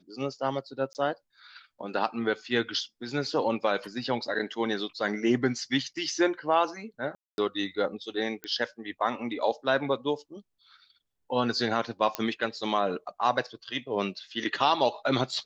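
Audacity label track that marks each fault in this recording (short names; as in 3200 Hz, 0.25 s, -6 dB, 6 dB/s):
0.930000	0.950000	gap 19 ms
7.150000	7.380000	gap 0.231 s
8.440000	8.440000	pop -19 dBFS
12.150000	12.150000	pop -12 dBFS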